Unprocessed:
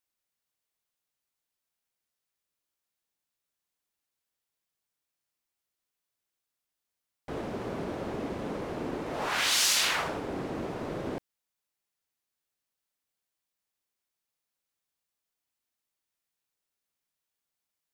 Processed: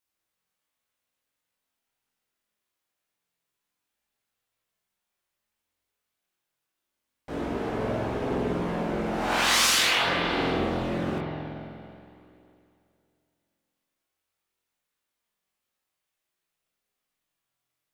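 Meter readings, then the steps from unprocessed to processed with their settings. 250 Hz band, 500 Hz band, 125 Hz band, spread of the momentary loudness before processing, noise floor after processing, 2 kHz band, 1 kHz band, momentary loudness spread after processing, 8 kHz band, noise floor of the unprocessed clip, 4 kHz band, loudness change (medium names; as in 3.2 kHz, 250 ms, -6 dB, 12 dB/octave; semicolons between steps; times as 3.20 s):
+7.0 dB, +6.0 dB, +8.0 dB, 14 LU, -84 dBFS, +6.0 dB, +7.0 dB, 16 LU, +1.5 dB, under -85 dBFS, +4.0 dB, +4.5 dB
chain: spring tank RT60 2.6 s, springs 46 ms, chirp 60 ms, DRR -3 dB; chorus voices 2, 0.24 Hz, delay 20 ms, depth 3.9 ms; trim +4.5 dB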